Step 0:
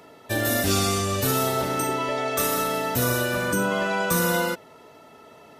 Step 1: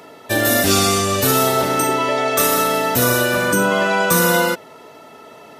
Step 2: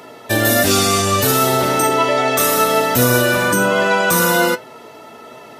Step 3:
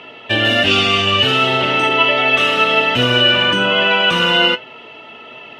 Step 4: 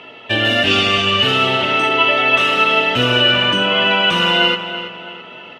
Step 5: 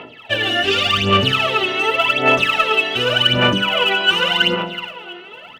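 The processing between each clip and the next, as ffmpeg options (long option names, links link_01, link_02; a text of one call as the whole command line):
ffmpeg -i in.wav -af "lowshelf=frequency=91:gain=-12,volume=8dB" out.wav
ffmpeg -i in.wav -filter_complex "[0:a]asplit=2[link_01][link_02];[link_02]alimiter=limit=-10dB:level=0:latency=1,volume=2.5dB[link_03];[link_01][link_03]amix=inputs=2:normalize=0,flanger=delay=7.8:depth=1.6:regen=63:speed=1.3:shape=triangular" out.wav
ffmpeg -i in.wav -af "lowpass=frequency=2900:width_type=q:width=9.9,volume=-2.5dB" out.wav
ffmpeg -i in.wav -filter_complex "[0:a]asplit=2[link_01][link_02];[link_02]adelay=331,lowpass=frequency=3700:poles=1,volume=-10.5dB,asplit=2[link_03][link_04];[link_04]adelay=331,lowpass=frequency=3700:poles=1,volume=0.43,asplit=2[link_05][link_06];[link_06]adelay=331,lowpass=frequency=3700:poles=1,volume=0.43,asplit=2[link_07][link_08];[link_08]adelay=331,lowpass=frequency=3700:poles=1,volume=0.43,asplit=2[link_09][link_10];[link_10]adelay=331,lowpass=frequency=3700:poles=1,volume=0.43[link_11];[link_01][link_03][link_05][link_07][link_09][link_11]amix=inputs=6:normalize=0,volume=-1dB" out.wav
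ffmpeg -i in.wav -filter_complex "[0:a]aphaser=in_gain=1:out_gain=1:delay=2.8:decay=0.76:speed=0.87:type=sinusoidal,asplit=2[link_01][link_02];[link_02]asoftclip=type=tanh:threshold=-7dB,volume=-10.5dB[link_03];[link_01][link_03]amix=inputs=2:normalize=0,volume=-7.5dB" out.wav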